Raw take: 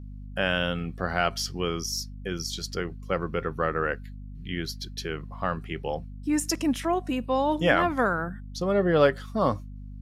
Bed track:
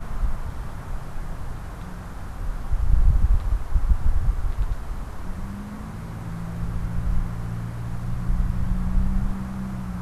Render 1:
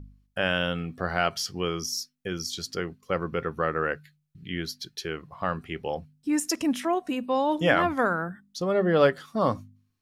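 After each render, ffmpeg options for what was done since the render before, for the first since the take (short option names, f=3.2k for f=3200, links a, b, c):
-af "bandreject=f=50:t=h:w=4,bandreject=f=100:t=h:w=4,bandreject=f=150:t=h:w=4,bandreject=f=200:t=h:w=4,bandreject=f=250:t=h:w=4"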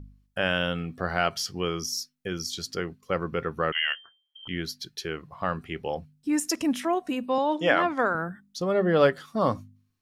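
-filter_complex "[0:a]asettb=1/sr,asplit=3[a][b][c];[a]atrim=end=3.724[d];[b]atrim=start=3.72:end=4.48,asetpts=PTS-STARTPTS,afade=t=in:d=0.004:c=qsin,afade=t=out:st=0.756:d=0.004:c=qsin,lowpass=f=2.8k:t=q:w=0.5098,lowpass=f=2.8k:t=q:w=0.6013,lowpass=f=2.8k:t=q:w=0.9,lowpass=f=2.8k:t=q:w=2.563,afreqshift=-3300[e];[c]atrim=start=4.476[f];[d][e]acrossfade=d=0.004:c1=hsin:c2=qsin[g];[g][f]acrossfade=d=0.004:c1=qsin:c2=hsin,asettb=1/sr,asplit=3[h][i][j];[h]atrim=end=7.384[k];[i]atrim=start=7.38:end=8.15,asetpts=PTS-STARTPTS,afade=t=in:d=0.004:c=qsin,afade=t=out:st=0.766:d=0.004:c=qsin,highpass=240,lowpass=7k[l];[j]atrim=start=8.146[m];[k][l]acrossfade=d=0.004:c1=hsin:c2=qsin[n];[n][m]acrossfade=d=0.004:c1=qsin:c2=hsin"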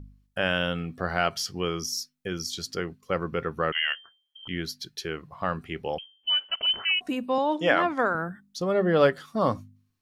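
-filter_complex "[0:a]asettb=1/sr,asplit=3[a][b][c];[a]atrim=end=5.984[d];[b]atrim=start=5.98:end=7.01,asetpts=PTS-STARTPTS,afade=t=in:d=0.004:c=qsin,afade=t=out:st=1.026:d=0.004:c=qsin,lowpass=f=2.8k:t=q:w=0.5098,lowpass=f=2.8k:t=q:w=0.6013,lowpass=f=2.8k:t=q:w=0.9,lowpass=f=2.8k:t=q:w=2.563,afreqshift=-3300[e];[c]atrim=start=7.006[f];[d][e]acrossfade=d=0.004:c1=hsin:c2=qsin[g];[g][f]acrossfade=d=0.004:c1=qsin:c2=hsin"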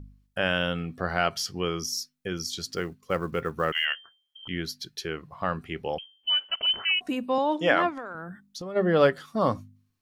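-filter_complex "[0:a]asettb=1/sr,asplit=3[a][b][c];[a]atrim=end=2.674[d];[b]atrim=start=2.67:end=3.85,asetpts=PTS-STARTPTS,afade=t=in:d=0.004:c=qsin,afade=t=out:st=1.176:d=0.004:c=qsin,acrusher=bits=8:mode=log:mix=0:aa=0.000001[e];[c]atrim=start=3.846[f];[d][e]acrossfade=d=0.004:c1=hsin:c2=qsin[g];[g][f]acrossfade=d=0.004:c1=qsin:c2=hsin,asplit=3[h][i][j];[h]afade=t=out:st=7.89:d=0.02[k];[i]acompressor=threshold=-34dB:ratio=5:attack=3.2:release=140:knee=1:detection=peak,afade=t=in:st=7.89:d=0.02,afade=t=out:st=8.75:d=0.02[l];[j]afade=t=in:st=8.75:d=0.02[m];[k][l][m]amix=inputs=3:normalize=0"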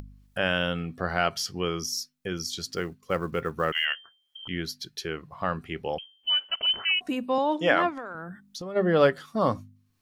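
-af "acompressor=mode=upward:threshold=-38dB:ratio=2.5"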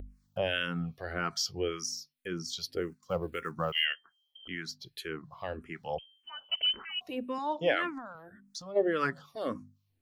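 -filter_complex "[0:a]acrossover=split=1100[a][b];[a]aeval=exprs='val(0)*(1-0.7/2+0.7/2*cos(2*PI*2.5*n/s))':c=same[c];[b]aeval=exprs='val(0)*(1-0.7/2-0.7/2*cos(2*PI*2.5*n/s))':c=same[d];[c][d]amix=inputs=2:normalize=0,asplit=2[e][f];[f]afreqshift=-1.8[g];[e][g]amix=inputs=2:normalize=1"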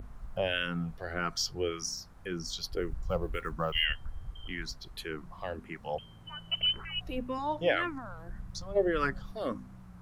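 -filter_complex "[1:a]volume=-20dB[a];[0:a][a]amix=inputs=2:normalize=0"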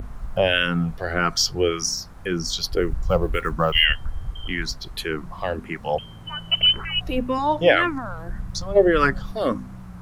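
-af "volume=11.5dB"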